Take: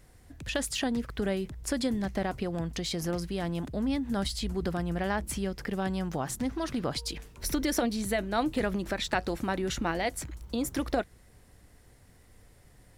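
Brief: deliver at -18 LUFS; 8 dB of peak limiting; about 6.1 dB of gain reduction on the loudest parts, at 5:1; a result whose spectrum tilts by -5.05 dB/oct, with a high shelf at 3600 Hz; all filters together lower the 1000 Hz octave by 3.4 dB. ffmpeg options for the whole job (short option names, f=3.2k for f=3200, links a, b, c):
-af "equalizer=f=1k:t=o:g=-4.5,highshelf=f=3.6k:g=-7.5,acompressor=threshold=-33dB:ratio=5,volume=21.5dB,alimiter=limit=-7.5dB:level=0:latency=1"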